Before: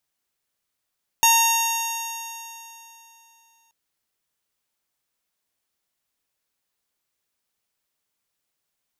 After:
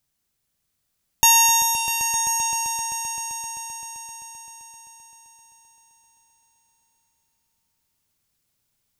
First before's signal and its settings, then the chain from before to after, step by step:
stretched partials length 2.48 s, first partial 914 Hz, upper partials -14/-4/-9/-18/-11/0/-19/-18/-15/-13/-7.5 dB, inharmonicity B 0.0011, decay 3.06 s, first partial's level -16.5 dB
tone controls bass +13 dB, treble +4 dB; on a send: echo with a slow build-up 130 ms, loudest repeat 5, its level -11 dB

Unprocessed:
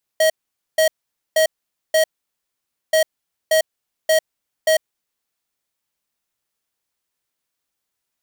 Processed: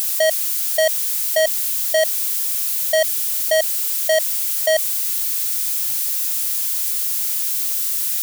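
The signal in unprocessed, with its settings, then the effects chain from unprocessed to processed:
beep pattern square 634 Hz, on 0.10 s, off 0.48 s, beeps 4, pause 0.89 s, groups 2, -14.5 dBFS
zero-crossing glitches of -24.5 dBFS; level flattener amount 50%

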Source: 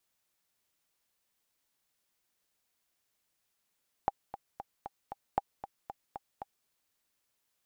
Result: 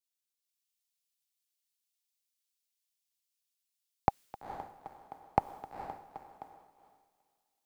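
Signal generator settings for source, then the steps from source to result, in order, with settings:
metronome 231 bpm, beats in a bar 5, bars 2, 800 Hz, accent 13 dB -14 dBFS
dynamic bell 810 Hz, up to -4 dB, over -50 dBFS, Q 1.4; on a send: echo that smears into a reverb 452 ms, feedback 42%, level -3 dB; on the sum: three bands expanded up and down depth 100%

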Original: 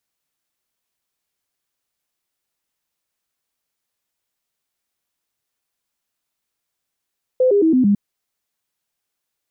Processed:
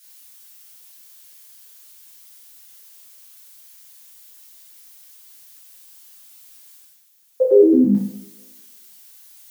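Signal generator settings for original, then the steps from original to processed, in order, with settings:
stepped sine 511 Hz down, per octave 3, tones 5, 0.11 s, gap 0.00 s -11 dBFS
tilt EQ +4 dB/octave; reverse; upward compressor, threshold -43 dBFS; reverse; two-slope reverb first 0.66 s, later 1.7 s, from -28 dB, DRR -7 dB

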